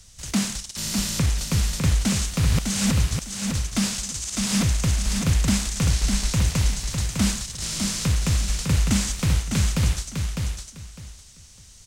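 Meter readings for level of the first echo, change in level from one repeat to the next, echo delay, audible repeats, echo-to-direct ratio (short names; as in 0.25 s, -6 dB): -5.0 dB, -13.5 dB, 0.604 s, 3, -5.0 dB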